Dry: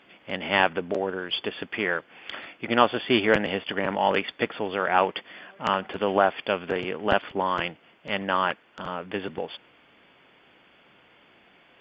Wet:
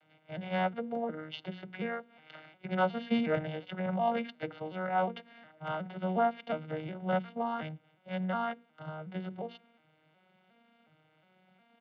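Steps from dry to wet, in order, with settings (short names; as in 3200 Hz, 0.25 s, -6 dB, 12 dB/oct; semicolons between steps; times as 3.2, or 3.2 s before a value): arpeggiated vocoder minor triad, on D#3, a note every 0.362 s; notches 60/120/180/240/300/360/420/480 Hz; comb 1.4 ms, depth 51%; gain -7 dB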